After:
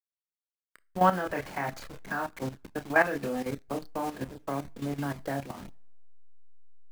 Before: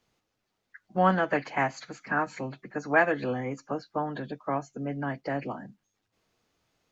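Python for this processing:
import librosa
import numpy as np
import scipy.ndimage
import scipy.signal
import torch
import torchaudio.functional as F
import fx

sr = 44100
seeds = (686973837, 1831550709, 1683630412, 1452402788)

y = fx.delta_hold(x, sr, step_db=-36.5)
y = fx.rev_double_slope(y, sr, seeds[0], early_s=0.33, late_s=1.7, knee_db=-27, drr_db=18.5)
y = fx.chorus_voices(y, sr, voices=2, hz=0.61, base_ms=29, depth_ms=1.4, mix_pct=35)
y = fx.level_steps(y, sr, step_db=12)
y = y * librosa.db_to_amplitude(5.0)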